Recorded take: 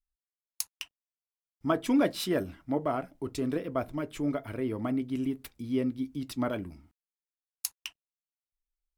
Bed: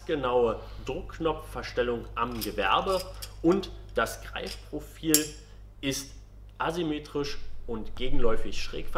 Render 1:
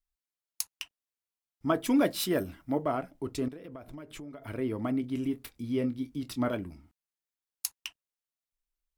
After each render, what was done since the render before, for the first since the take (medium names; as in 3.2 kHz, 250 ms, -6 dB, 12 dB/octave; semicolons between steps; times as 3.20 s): 1.75–2.82 s: treble shelf 9.5 kHz +10 dB; 3.48–4.42 s: compression 12:1, threshold -40 dBFS; 5.01–6.56 s: doubling 25 ms -10 dB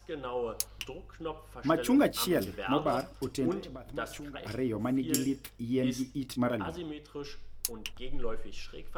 add bed -10 dB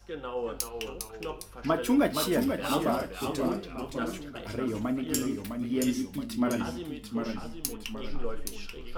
gated-style reverb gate 90 ms falling, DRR 7 dB; ever faster or slower copies 368 ms, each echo -1 st, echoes 2, each echo -6 dB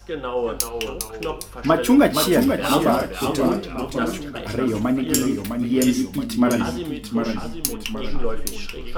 trim +9.5 dB